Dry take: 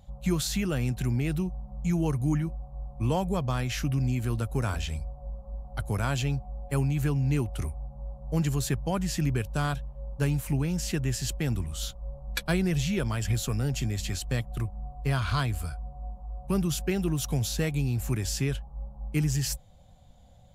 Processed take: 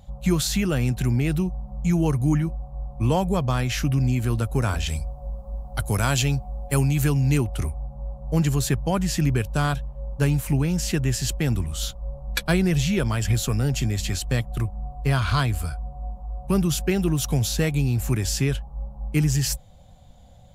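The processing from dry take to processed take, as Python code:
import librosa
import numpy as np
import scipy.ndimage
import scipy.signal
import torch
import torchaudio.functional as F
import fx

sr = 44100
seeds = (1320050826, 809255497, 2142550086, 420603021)

y = fx.high_shelf(x, sr, hz=3500.0, db=8.5, at=(4.86, 7.38))
y = y * 10.0 ** (5.5 / 20.0)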